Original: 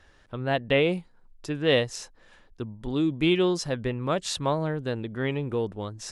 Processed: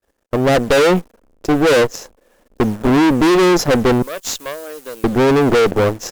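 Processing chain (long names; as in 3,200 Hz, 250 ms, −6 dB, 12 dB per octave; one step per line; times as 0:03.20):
downsampling to 16,000 Hz
bit reduction 9 bits
downward expander −46 dBFS
graphic EQ with 10 bands 125 Hz −8 dB, 250 Hz +7 dB, 500 Hz +10 dB, 2,000 Hz −3 dB, 4,000 Hz −7 dB
automatic gain control gain up to 7 dB
leveller curve on the samples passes 2
0:04.02–0:05.04: first difference
tube saturation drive 19 dB, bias 0.8
level +8.5 dB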